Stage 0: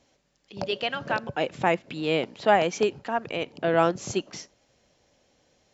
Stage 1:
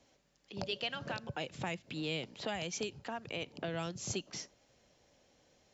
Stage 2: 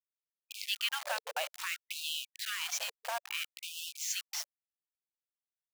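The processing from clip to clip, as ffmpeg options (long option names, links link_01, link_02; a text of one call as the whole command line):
ffmpeg -i in.wav -filter_complex "[0:a]acrossover=split=150|3000[link_01][link_02][link_03];[link_02]acompressor=threshold=-35dB:ratio=10[link_04];[link_01][link_04][link_03]amix=inputs=3:normalize=0,volume=-3dB" out.wav
ffmpeg -i in.wav -af "acrusher=bits=6:mix=0:aa=0.000001,afftfilt=real='re*gte(b*sr/1024,450*pow(2600/450,0.5+0.5*sin(2*PI*0.59*pts/sr)))':imag='im*gte(b*sr/1024,450*pow(2600/450,0.5+0.5*sin(2*PI*0.59*pts/sr)))':win_size=1024:overlap=0.75,volume=5dB" out.wav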